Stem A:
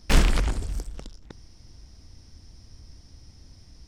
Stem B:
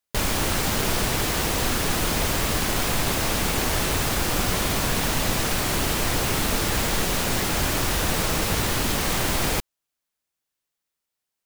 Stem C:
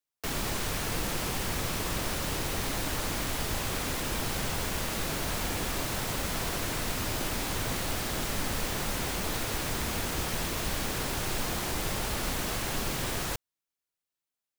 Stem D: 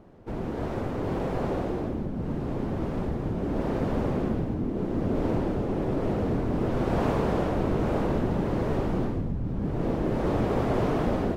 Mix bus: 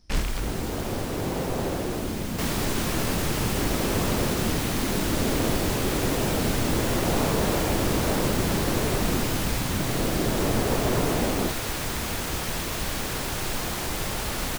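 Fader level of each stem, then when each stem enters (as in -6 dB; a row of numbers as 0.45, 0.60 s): -8.0, -12.5, +2.5, 0.0 dB; 0.00, 0.00, 2.15, 0.15 s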